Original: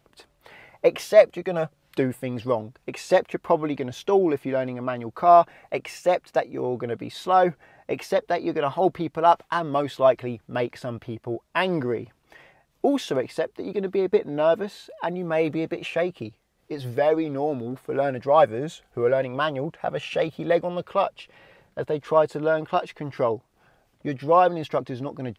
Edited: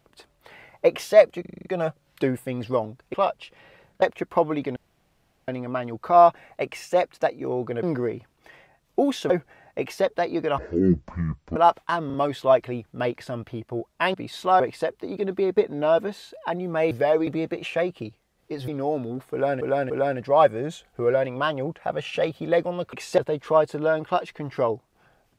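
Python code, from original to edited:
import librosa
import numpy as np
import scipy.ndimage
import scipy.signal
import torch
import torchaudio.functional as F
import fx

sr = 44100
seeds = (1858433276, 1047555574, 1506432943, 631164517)

y = fx.edit(x, sr, fx.stutter(start_s=1.41, slice_s=0.04, count=7),
    fx.swap(start_s=2.9, length_s=0.25, other_s=20.91, other_length_s=0.88),
    fx.room_tone_fill(start_s=3.89, length_s=0.72),
    fx.swap(start_s=6.96, length_s=0.46, other_s=11.69, other_length_s=1.47),
    fx.speed_span(start_s=8.7, length_s=0.49, speed=0.5),
    fx.stutter(start_s=9.69, slice_s=0.04, count=3),
    fx.move(start_s=16.88, length_s=0.36, to_s=15.47),
    fx.repeat(start_s=17.88, length_s=0.29, count=3), tone=tone)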